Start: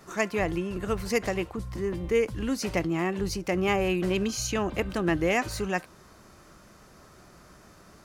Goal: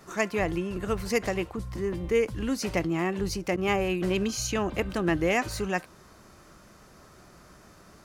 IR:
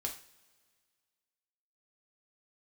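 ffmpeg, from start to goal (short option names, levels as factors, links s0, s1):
-filter_complex "[0:a]asettb=1/sr,asplit=3[s0][s1][s2];[s0]atrim=end=3.564[s3];[s1]atrim=start=3.56:end=4.01,asetpts=PTS-STARTPTS,afade=t=in:d=0.004:c=qsin,afade=t=out:st=0.446:d=0.004:c=qsin,agate=range=0.0224:threshold=0.0708:ratio=3:detection=peak[s4];[s2]atrim=start=4.006[s5];[s3][s4]acrossfade=d=0.004:c1=hsin:c2=qsin[s6];[s6][s5]acrossfade=d=0.004:c1=qsin:c2=hsin"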